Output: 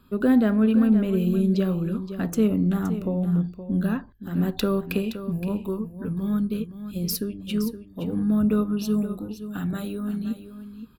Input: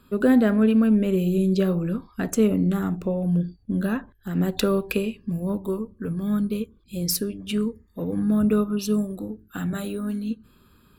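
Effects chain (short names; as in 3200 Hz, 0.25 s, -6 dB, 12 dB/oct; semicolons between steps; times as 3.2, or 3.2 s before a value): graphic EQ 500/2000/8000 Hz -4/-4/-8 dB; echo 0.519 s -11.5 dB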